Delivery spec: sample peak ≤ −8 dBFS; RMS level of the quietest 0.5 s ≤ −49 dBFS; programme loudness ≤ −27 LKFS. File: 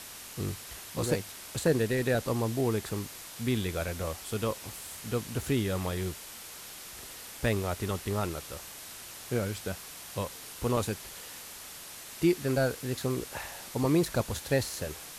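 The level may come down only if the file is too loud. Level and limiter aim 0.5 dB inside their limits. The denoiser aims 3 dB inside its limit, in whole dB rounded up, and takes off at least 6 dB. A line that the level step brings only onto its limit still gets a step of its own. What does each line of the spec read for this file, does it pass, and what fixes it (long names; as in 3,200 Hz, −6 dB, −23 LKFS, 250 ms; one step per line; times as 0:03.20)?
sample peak −13.5 dBFS: in spec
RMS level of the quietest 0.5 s −45 dBFS: out of spec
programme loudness −32.5 LKFS: in spec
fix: broadband denoise 7 dB, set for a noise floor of −45 dBFS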